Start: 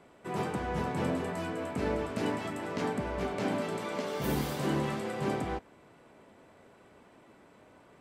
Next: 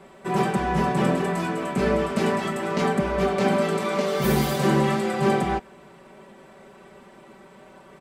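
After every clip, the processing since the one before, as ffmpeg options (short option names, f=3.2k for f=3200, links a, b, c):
-af "aecho=1:1:5.2:0.93,volume=7dB"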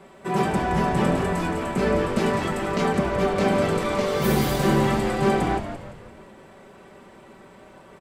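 -filter_complex "[0:a]asplit=6[a][b][c][d][e][f];[b]adelay=171,afreqshift=-94,volume=-9.5dB[g];[c]adelay=342,afreqshift=-188,volume=-16.1dB[h];[d]adelay=513,afreqshift=-282,volume=-22.6dB[i];[e]adelay=684,afreqshift=-376,volume=-29.2dB[j];[f]adelay=855,afreqshift=-470,volume=-35.7dB[k];[a][g][h][i][j][k]amix=inputs=6:normalize=0"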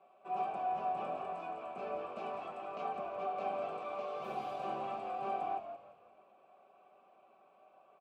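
-filter_complex "[0:a]asplit=3[a][b][c];[a]bandpass=f=730:t=q:w=8,volume=0dB[d];[b]bandpass=f=1.09k:t=q:w=8,volume=-6dB[e];[c]bandpass=f=2.44k:t=q:w=8,volume=-9dB[f];[d][e][f]amix=inputs=3:normalize=0,volume=-5.5dB"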